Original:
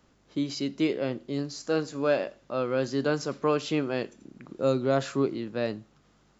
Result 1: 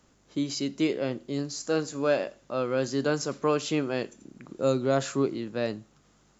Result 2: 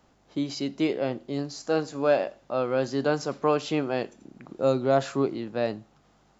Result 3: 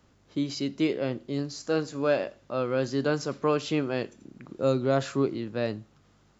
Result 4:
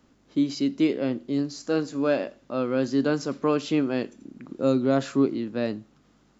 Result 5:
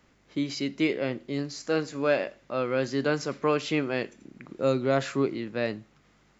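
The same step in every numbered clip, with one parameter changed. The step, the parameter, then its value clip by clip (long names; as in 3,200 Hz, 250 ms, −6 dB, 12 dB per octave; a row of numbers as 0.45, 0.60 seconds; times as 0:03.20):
parametric band, centre frequency: 7,100, 760, 93, 260, 2,100 Hertz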